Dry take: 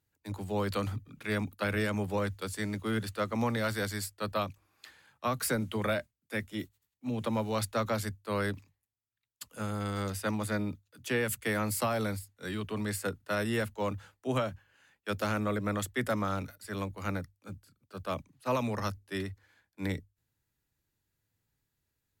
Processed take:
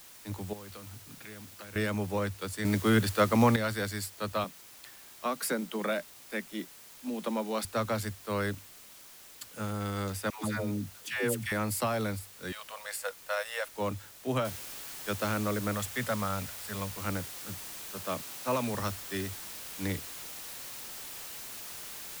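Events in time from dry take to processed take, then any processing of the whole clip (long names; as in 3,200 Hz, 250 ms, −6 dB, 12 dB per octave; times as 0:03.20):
0:00.53–0:01.76: downward compressor 8 to 1, threshold −44 dBFS
0:02.65–0:03.56: clip gain +7.5 dB
0:04.44–0:07.65: elliptic high-pass filter 170 Hz
0:10.30–0:11.52: all-pass dispersion lows, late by 148 ms, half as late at 550 Hz
0:12.52–0:13.74: linear-phase brick-wall high-pass 470 Hz
0:14.45: noise floor change −52 dB −43 dB
0:15.73–0:16.96: parametric band 330 Hz −12.5 dB 0.42 octaves
0:17.97–0:18.75: high-pass filter 120 Hz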